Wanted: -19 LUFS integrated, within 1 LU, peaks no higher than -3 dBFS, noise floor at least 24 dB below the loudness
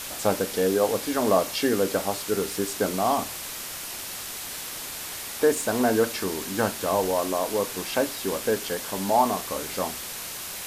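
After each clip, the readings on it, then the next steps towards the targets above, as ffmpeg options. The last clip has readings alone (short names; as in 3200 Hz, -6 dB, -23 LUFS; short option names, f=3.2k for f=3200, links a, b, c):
noise floor -36 dBFS; noise floor target -50 dBFS; loudness -26.0 LUFS; peak -7.5 dBFS; loudness target -19.0 LUFS
-> -af "afftdn=nr=14:nf=-36"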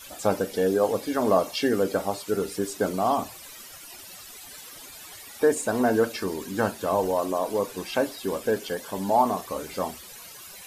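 noise floor -44 dBFS; noise floor target -50 dBFS
-> -af "afftdn=nr=6:nf=-44"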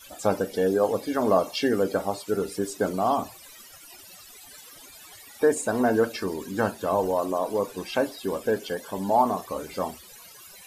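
noise floor -48 dBFS; noise floor target -50 dBFS
-> -af "afftdn=nr=6:nf=-48"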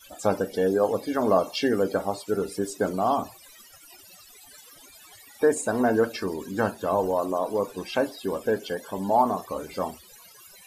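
noise floor -51 dBFS; loudness -26.0 LUFS; peak -8.0 dBFS; loudness target -19.0 LUFS
-> -af "volume=7dB,alimiter=limit=-3dB:level=0:latency=1"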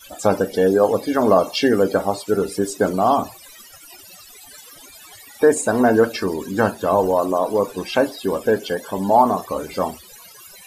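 loudness -19.0 LUFS; peak -3.0 dBFS; noise floor -44 dBFS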